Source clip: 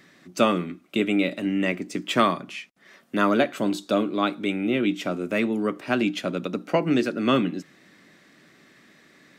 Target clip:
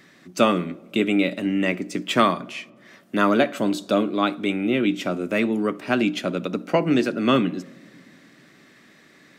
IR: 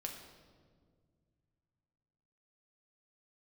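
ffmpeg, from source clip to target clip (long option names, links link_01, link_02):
-filter_complex "[0:a]asplit=2[link_01][link_02];[1:a]atrim=start_sample=2205,highshelf=frequency=2000:gain=-11,adelay=60[link_03];[link_02][link_03]afir=irnorm=-1:irlink=0,volume=-17dB[link_04];[link_01][link_04]amix=inputs=2:normalize=0,volume=2dB"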